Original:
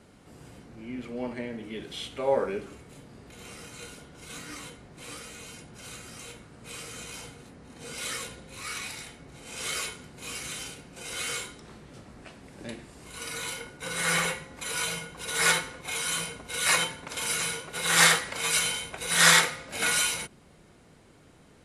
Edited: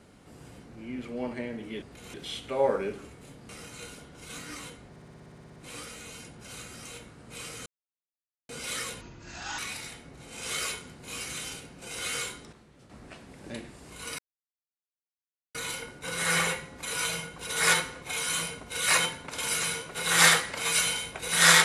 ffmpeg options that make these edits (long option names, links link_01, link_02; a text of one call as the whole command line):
ffmpeg -i in.wav -filter_complex "[0:a]asplit=22[link_01][link_02][link_03][link_04][link_05][link_06][link_07][link_08][link_09][link_10][link_11][link_12][link_13][link_14][link_15][link_16][link_17][link_18][link_19][link_20][link_21][link_22];[link_01]atrim=end=1.822[link_23];[link_02]atrim=start=3.168:end=3.492[link_24];[link_03]atrim=start=1.818:end=3.172[link_25];[link_04]atrim=start=3.488:end=4.962[link_26];[link_05]atrim=start=4.898:end=4.962[link_27];[link_06]atrim=start=4.898:end=4.962[link_28];[link_07]atrim=start=4.898:end=4.962[link_29];[link_08]atrim=start=4.898:end=4.962[link_30];[link_09]atrim=start=4.898:end=4.962[link_31];[link_10]atrim=start=4.898:end=4.962[link_32];[link_11]atrim=start=4.898:end=4.962[link_33];[link_12]atrim=start=4.898:end=4.962[link_34];[link_13]atrim=start=4.898:end=4.962[link_35];[link_14]atrim=start=4.898:end=4.962[link_36];[link_15]atrim=start=4.898:end=7,asetpts=PTS-STARTPTS,afade=type=out:start_time=2.098:duration=0.004:curve=hsin[link_37];[link_16]atrim=start=7:end=7.83,asetpts=PTS-STARTPTS,volume=0[link_38];[link_17]atrim=start=7.83:end=8.354,asetpts=PTS-STARTPTS,afade=type=in:duration=0.004:curve=hsin[link_39];[link_18]atrim=start=8.35:end=8.73,asetpts=PTS-STARTPTS,asetrate=29106,aresample=44100[link_40];[link_19]atrim=start=8.726:end=11.672[link_41];[link_20]atrim=start=11.668:end=12.042,asetpts=PTS-STARTPTS,volume=-8.5dB[link_42];[link_21]atrim=start=12.038:end=13.33,asetpts=PTS-STARTPTS,afade=type=out:start_time=1.288:duration=0.004:curve=hsin,apad=pad_dur=1.36[link_43];[link_22]atrim=start=13.33,asetpts=PTS-STARTPTS,afade=type=in:duration=0.004:curve=hsin[link_44];[link_23][link_24]acrossfade=duration=0.004:curve1=hsin:curve2=hsin[link_45];[link_45][link_25]acrossfade=duration=0.004:curve1=hsin:curve2=hsin[link_46];[link_46][link_26]acrossfade=duration=0.004:curve1=hsin:curve2=hsin[link_47];[link_47][link_27]acrossfade=duration=0.004:curve1=hsin:curve2=hsin[link_48];[link_48][link_28]acrossfade=duration=0.004:curve1=hsin:curve2=hsin[link_49];[link_49][link_29]acrossfade=duration=0.004:curve1=hsin:curve2=hsin[link_50];[link_50][link_30]acrossfade=duration=0.004:curve1=hsin:curve2=hsin[link_51];[link_51][link_31]acrossfade=duration=0.004:curve1=hsin:curve2=hsin[link_52];[link_52][link_32]acrossfade=duration=0.004:curve1=hsin:curve2=hsin[link_53];[link_53][link_33]acrossfade=duration=0.004:curve1=hsin:curve2=hsin[link_54];[link_54][link_34]acrossfade=duration=0.004:curve1=hsin:curve2=hsin[link_55];[link_55][link_35]acrossfade=duration=0.004:curve1=hsin:curve2=hsin[link_56];[link_56][link_36]acrossfade=duration=0.004:curve1=hsin:curve2=hsin[link_57];[link_37][link_38][link_39]concat=n=3:v=0:a=1[link_58];[link_57][link_58]acrossfade=duration=0.004:curve1=hsin:curve2=hsin[link_59];[link_59][link_40]acrossfade=duration=0.004:curve1=hsin:curve2=hsin[link_60];[link_60][link_41]acrossfade=duration=0.004:curve1=hsin:curve2=hsin[link_61];[link_61][link_42]acrossfade=duration=0.004:curve1=hsin:curve2=hsin[link_62];[link_43][link_44]concat=n=2:v=0:a=1[link_63];[link_62][link_63]acrossfade=duration=0.004:curve1=hsin:curve2=hsin" out.wav